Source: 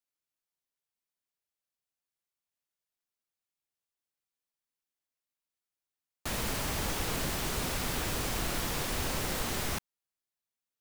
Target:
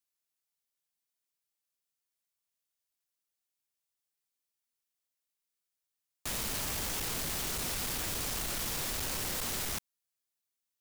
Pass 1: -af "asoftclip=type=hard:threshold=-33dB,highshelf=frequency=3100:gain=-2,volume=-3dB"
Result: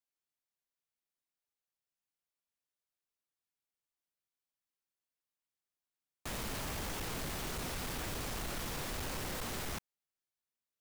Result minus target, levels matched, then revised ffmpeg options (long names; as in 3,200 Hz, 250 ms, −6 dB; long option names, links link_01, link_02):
8,000 Hz band −2.5 dB
-af "asoftclip=type=hard:threshold=-33dB,highshelf=frequency=3100:gain=8,volume=-3dB"